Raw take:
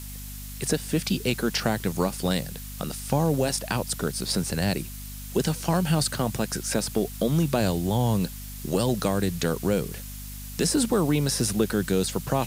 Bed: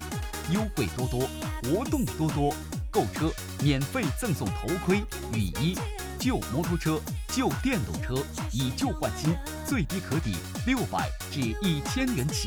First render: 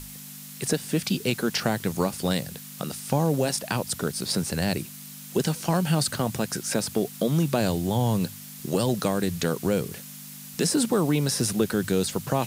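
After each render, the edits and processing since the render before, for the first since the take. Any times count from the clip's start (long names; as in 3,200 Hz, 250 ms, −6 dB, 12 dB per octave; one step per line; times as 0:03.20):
mains-hum notches 50/100 Hz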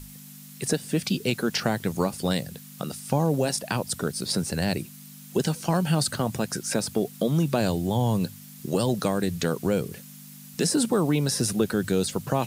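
broadband denoise 6 dB, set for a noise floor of −42 dBFS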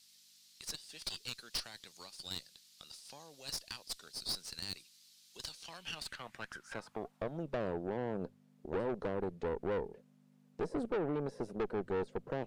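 band-pass filter sweep 4,400 Hz → 450 Hz, 0:05.48–0:07.70
tube saturation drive 31 dB, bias 0.8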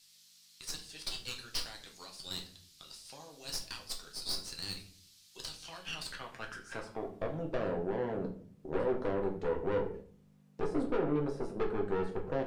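rectangular room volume 49 cubic metres, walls mixed, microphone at 0.56 metres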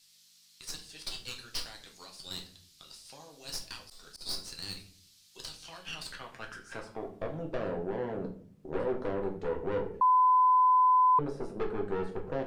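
0:03.68–0:04.21: volume swells 168 ms
0:10.01–0:11.19: beep over 1,010 Hz −19.5 dBFS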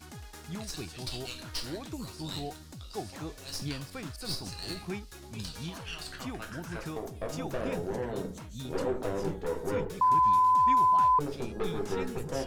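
mix in bed −12.5 dB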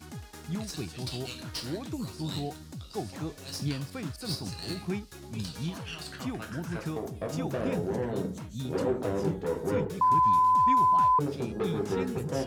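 high-pass filter 120 Hz 12 dB per octave
low-shelf EQ 240 Hz +10.5 dB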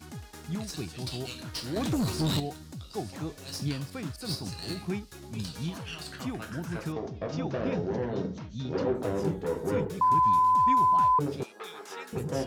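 0:01.76–0:02.40: leveller curve on the samples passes 3
0:06.92–0:08.95: Butterworth low-pass 6,000 Hz 48 dB per octave
0:11.43–0:12.13: high-pass filter 970 Hz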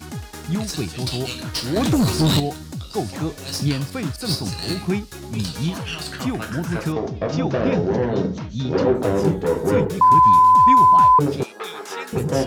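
level +10.5 dB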